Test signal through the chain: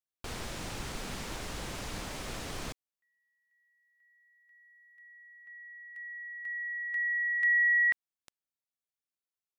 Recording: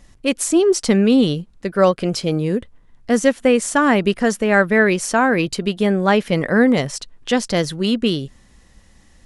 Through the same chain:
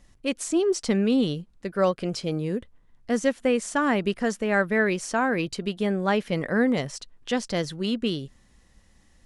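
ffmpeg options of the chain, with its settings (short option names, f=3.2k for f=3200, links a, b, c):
-filter_complex "[0:a]acrossover=split=9900[a][b];[b]acompressor=threshold=-53dB:ratio=4:attack=1:release=60[c];[a][c]amix=inputs=2:normalize=0,volume=-8dB"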